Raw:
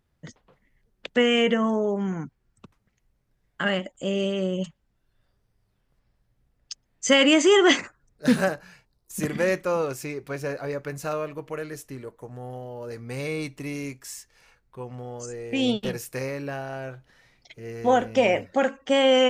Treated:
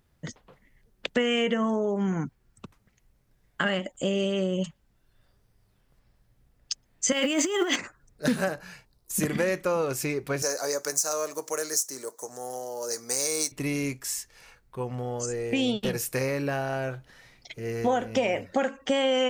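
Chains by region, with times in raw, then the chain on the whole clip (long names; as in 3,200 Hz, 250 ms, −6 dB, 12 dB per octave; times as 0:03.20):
0:07.12–0:07.76: mu-law and A-law mismatch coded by mu + high-pass filter 200 Hz 24 dB per octave + compressor whose output falls as the input rises −20 dBFS, ratio −0.5
0:10.42–0:13.52: running median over 3 samples + high-pass filter 430 Hz + high shelf with overshoot 4,200 Hz +14 dB, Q 3
whole clip: high-shelf EQ 6,800 Hz +4.5 dB; downward compressor 4 to 1, threshold −28 dBFS; level +4.5 dB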